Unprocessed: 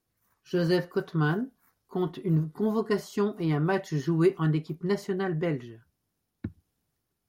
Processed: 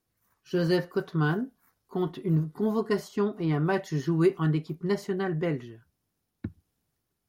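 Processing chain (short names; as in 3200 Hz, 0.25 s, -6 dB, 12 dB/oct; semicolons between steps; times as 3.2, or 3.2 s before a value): 3.07–3.53 high shelf 4600 Hz -> 7800 Hz -10.5 dB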